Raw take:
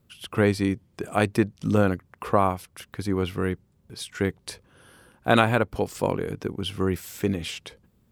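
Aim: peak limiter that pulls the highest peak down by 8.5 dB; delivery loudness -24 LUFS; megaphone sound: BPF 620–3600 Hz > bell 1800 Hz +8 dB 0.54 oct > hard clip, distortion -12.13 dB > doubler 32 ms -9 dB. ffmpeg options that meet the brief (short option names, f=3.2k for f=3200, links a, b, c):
-filter_complex "[0:a]alimiter=limit=-12.5dB:level=0:latency=1,highpass=620,lowpass=3.6k,equalizer=f=1.8k:t=o:w=0.54:g=8,asoftclip=type=hard:threshold=-20.5dB,asplit=2[a][b];[b]adelay=32,volume=-9dB[c];[a][c]amix=inputs=2:normalize=0,volume=9dB"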